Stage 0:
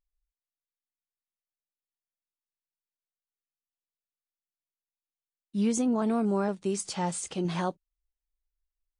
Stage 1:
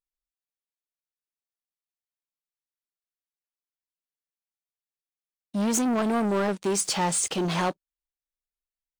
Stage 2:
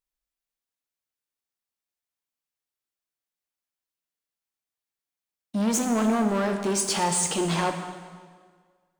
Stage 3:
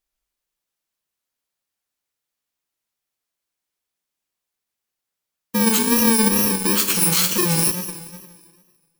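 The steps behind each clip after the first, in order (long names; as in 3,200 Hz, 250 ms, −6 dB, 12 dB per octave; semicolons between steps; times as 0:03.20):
leveller curve on the samples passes 3; low-shelf EQ 200 Hz −9.5 dB
in parallel at 0 dB: brickwall limiter −25.5 dBFS, peak gain reduction 9.5 dB; on the sum: dense smooth reverb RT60 1.7 s, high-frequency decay 0.85×, DRR 5 dB; level −3.5 dB
samples in bit-reversed order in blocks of 64 samples; tape wow and flutter 72 cents; level +7 dB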